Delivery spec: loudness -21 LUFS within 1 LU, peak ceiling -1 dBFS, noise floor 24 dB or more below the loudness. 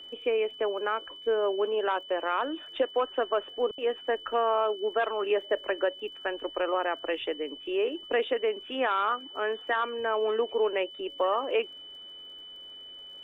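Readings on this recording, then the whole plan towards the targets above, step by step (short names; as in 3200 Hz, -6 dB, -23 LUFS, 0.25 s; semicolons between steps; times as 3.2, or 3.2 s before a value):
ticks 41/s; steady tone 3000 Hz; tone level -43 dBFS; loudness -29.5 LUFS; peak -15.5 dBFS; loudness target -21.0 LUFS
-> de-click; notch 3000 Hz, Q 30; gain +8.5 dB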